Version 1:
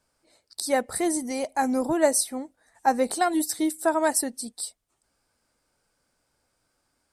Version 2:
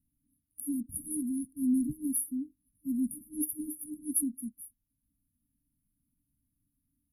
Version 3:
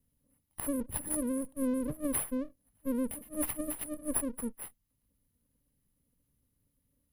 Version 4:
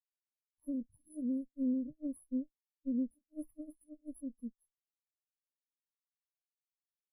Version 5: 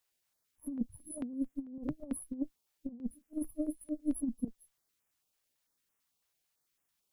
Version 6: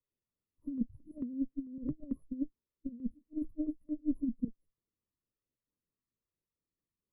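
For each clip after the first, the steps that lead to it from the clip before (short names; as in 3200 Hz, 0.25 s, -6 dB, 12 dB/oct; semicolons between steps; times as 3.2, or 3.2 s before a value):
FFT band-reject 310–9600 Hz
minimum comb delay 1 ms; compressor 5:1, threshold -33 dBFS, peak gain reduction 8 dB; gain +4.5 dB
limiter -25 dBFS, peak gain reduction 9 dB; spectral expander 2.5:1; gain -1 dB
negative-ratio compressor -41 dBFS, ratio -0.5; stepped notch 9 Hz 210–4200 Hz; gain +9 dB
running mean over 57 samples; gain +2.5 dB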